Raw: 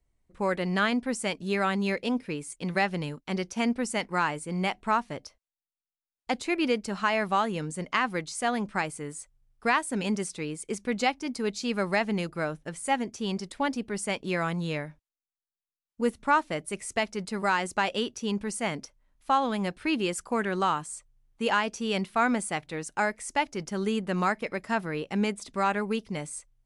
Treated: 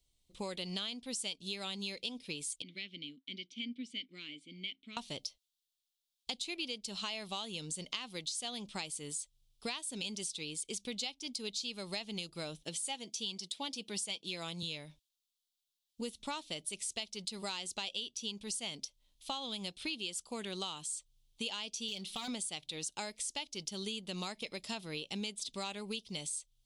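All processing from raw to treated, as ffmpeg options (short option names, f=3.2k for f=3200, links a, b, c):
-filter_complex "[0:a]asettb=1/sr,asplit=3[a][b][c];[a]atrim=end=2.624[d];[b]atrim=start=2.62:end=4.97,asetpts=PTS-STARTPTS,afade=t=in:d=0.004:c=qsin,afade=t=out:st=2.346:d=0.004:c=qsin,asplit=3[e][f][g];[e]bandpass=f=270:t=q:w=8,volume=0dB[h];[f]bandpass=f=2.29k:t=q:w=8,volume=-6dB[i];[g]bandpass=f=3.01k:t=q:w=8,volume=-9dB[j];[h][i][j]amix=inputs=3:normalize=0,highshelf=f=10k:g=-11.5[k];[c]atrim=start=4.966[l];[d][k]acrossfade=d=0.004:c1=hsin:c2=qsin[m];[m][l]acrossfade=d=0.004:c1=qsin:c2=hsin,asettb=1/sr,asplit=3[n][o][p];[n]atrim=end=12.644[q];[o]atrim=start=12.64:end=14.63,asetpts=PTS-STARTPTS,afade=t=in:d=0.004:c=qsin,afade=t=out:st=1.986:d=0.004:c=qsin,highpass=170,aecho=1:1:6.1:0.34,atrim=end_sample=87759[r];[p]atrim=start=14.626[s];[q][r]acrossfade=d=0.004:c1=hsin:c2=qsin[t];[t][s]acrossfade=d=0.004:c1=qsin:c2=hsin,asettb=1/sr,asplit=3[u][v][w];[u]atrim=end=21.884[x];[v]atrim=start=21.88:end=22.28,asetpts=PTS-STARTPTS,afade=t=in:d=0.004:c=qsin,afade=t=out:st=0.396:d=0.004:c=qsin,aecho=1:1:5.3:0.97,atrim=end_sample=17640,acompressor=threshold=-27dB:ratio=5:attack=3.2:release=140:knee=1:detection=peak,asoftclip=type=hard:threshold=-25.5dB[y];[w]atrim=start=22.276[z];[x][y]acrossfade=d=0.004:c1=hsin:c2=qsin[aa];[aa][z]acrossfade=d=0.004:c1=qsin:c2=hsin,highshelf=f=2.4k:t=q:w=3:g=13,acompressor=threshold=-31dB:ratio=6,volume=-6dB"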